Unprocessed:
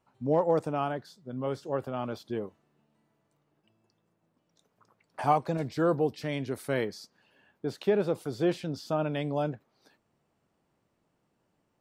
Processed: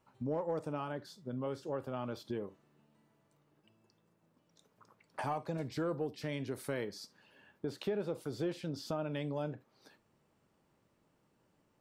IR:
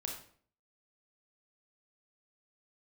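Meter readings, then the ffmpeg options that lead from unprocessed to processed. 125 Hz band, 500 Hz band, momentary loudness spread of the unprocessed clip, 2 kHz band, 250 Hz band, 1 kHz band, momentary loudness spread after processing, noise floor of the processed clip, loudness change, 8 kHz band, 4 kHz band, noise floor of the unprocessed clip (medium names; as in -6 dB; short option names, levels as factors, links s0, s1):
-7.0 dB, -9.0 dB, 11 LU, -7.5 dB, -7.5 dB, -11.0 dB, 7 LU, -75 dBFS, -8.5 dB, -3.5 dB, -5.0 dB, -76 dBFS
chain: -filter_complex "[0:a]asplit=2[s0][s1];[1:a]atrim=start_sample=2205,atrim=end_sample=3528[s2];[s1][s2]afir=irnorm=-1:irlink=0,volume=0.251[s3];[s0][s3]amix=inputs=2:normalize=0,asoftclip=type=tanh:threshold=0.299,acompressor=threshold=0.0126:ratio=2.5,bandreject=f=710:w=12"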